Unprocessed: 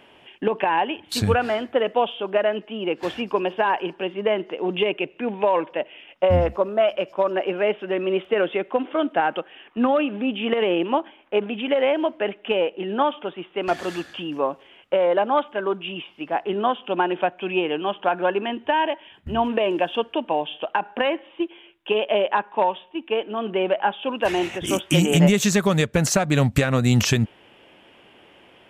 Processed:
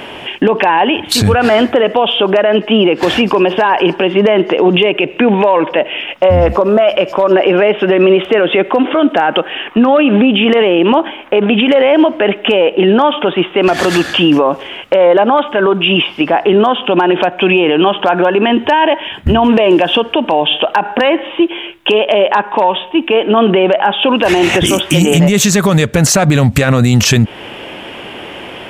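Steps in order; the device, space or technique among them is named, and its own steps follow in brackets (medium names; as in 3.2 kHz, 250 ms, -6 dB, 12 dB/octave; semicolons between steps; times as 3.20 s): loud club master (compression 2:1, threshold -25 dBFS, peak gain reduction 8 dB; hard clipper -14.5 dBFS, distortion -34 dB; loudness maximiser +24.5 dB); trim -1 dB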